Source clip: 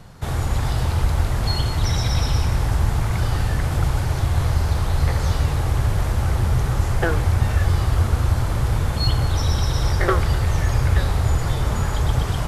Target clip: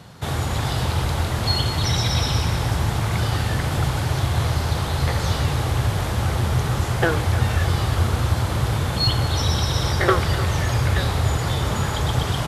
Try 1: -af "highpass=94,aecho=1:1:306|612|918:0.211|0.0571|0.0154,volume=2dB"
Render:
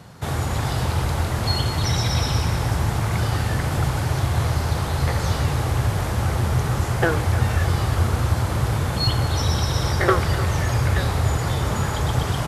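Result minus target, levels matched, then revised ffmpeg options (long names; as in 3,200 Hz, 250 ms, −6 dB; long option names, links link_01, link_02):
4,000 Hz band −2.5 dB
-af "highpass=94,equalizer=frequency=3500:width=1.8:gain=4.5,aecho=1:1:306|612|918:0.211|0.0571|0.0154,volume=2dB"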